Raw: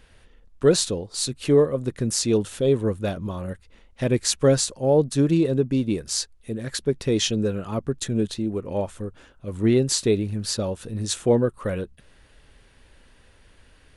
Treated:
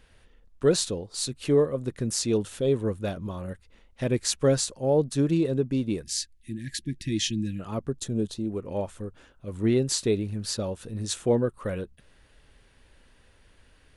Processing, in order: 6.03–7.6 spectral gain 350–1600 Hz -26 dB; 7.9–8.45 bell 2000 Hz -9 dB 1.1 oct; gain -4 dB

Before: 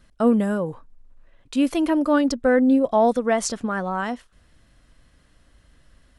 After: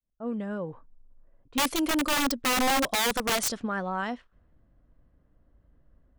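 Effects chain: opening faded in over 0.88 s; high shelf 2900 Hz +7 dB; low-pass opened by the level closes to 690 Hz, open at -17 dBFS; wrapped overs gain 14.5 dB; gain -5.5 dB

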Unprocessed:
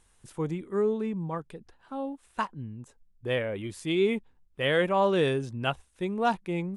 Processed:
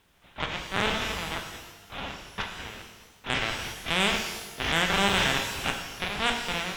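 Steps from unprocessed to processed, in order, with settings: spectral contrast lowered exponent 0.17; bell 100 Hz -13.5 dB 1.2 oct; LPC vocoder at 8 kHz pitch kept; added noise pink -68 dBFS; added harmonics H 6 -16 dB, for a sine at -8.5 dBFS; shimmer reverb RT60 1.2 s, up +12 st, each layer -8 dB, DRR 3 dB

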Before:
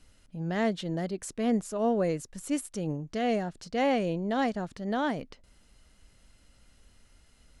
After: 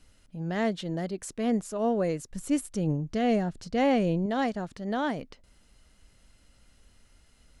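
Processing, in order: 2.31–4.26 low shelf 250 Hz +8.5 dB

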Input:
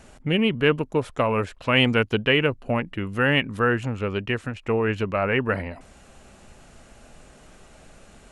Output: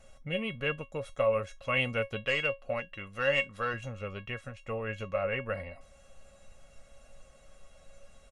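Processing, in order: comb 1.5 ms, depth 49%; 2.24–3.74 overdrive pedal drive 7 dB, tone 6300 Hz, clips at -6.5 dBFS; resonator 550 Hz, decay 0.16 s, harmonics all, mix 90%; gain +3 dB

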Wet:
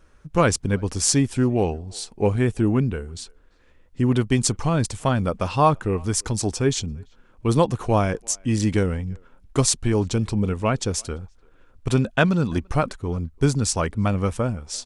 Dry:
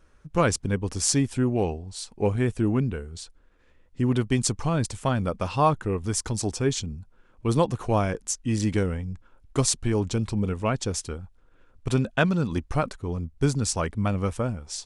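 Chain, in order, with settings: speakerphone echo 0.34 s, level -28 dB; gain +3.5 dB

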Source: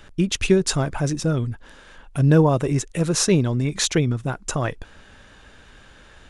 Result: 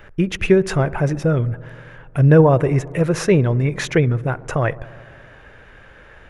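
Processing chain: ten-band EQ 125 Hz +4 dB, 250 Hz -4 dB, 500 Hz +6 dB, 2000 Hz +7 dB, 4000 Hz -8 dB, 8000 Hz -12 dB; on a send: dark delay 68 ms, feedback 80%, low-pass 1200 Hz, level -20.5 dB; on the sum: gain +1.5 dB

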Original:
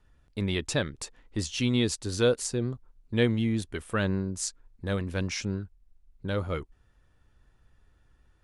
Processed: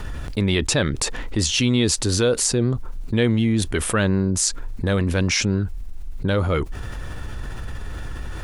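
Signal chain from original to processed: fast leveller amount 70%; gain +3 dB

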